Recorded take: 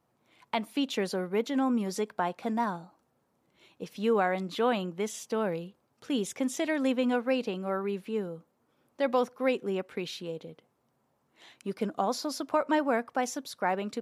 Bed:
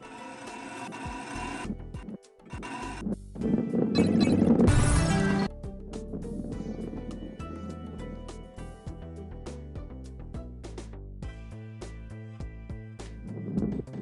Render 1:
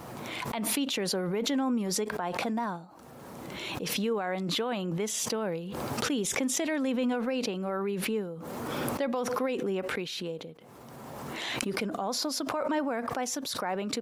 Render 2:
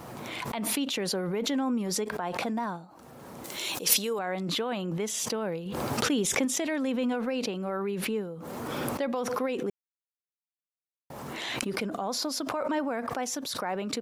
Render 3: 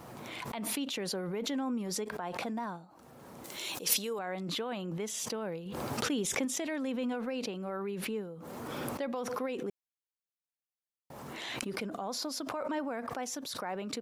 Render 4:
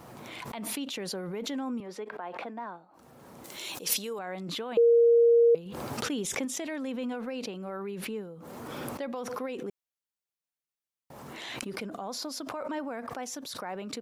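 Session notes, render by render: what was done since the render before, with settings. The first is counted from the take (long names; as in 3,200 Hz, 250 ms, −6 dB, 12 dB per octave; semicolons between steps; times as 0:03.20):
brickwall limiter −22 dBFS, peak gain reduction 8 dB; background raised ahead of every attack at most 22 dB per second
0:03.44–0:04.19: bass and treble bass −9 dB, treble +14 dB; 0:05.66–0:06.45: clip gain +3 dB; 0:09.70–0:11.10: silence
level −5.5 dB
0:01.80–0:02.94: three-way crossover with the lows and the highs turned down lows −15 dB, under 260 Hz, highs −18 dB, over 3,200 Hz; 0:04.77–0:05.55: beep over 468 Hz −16.5 dBFS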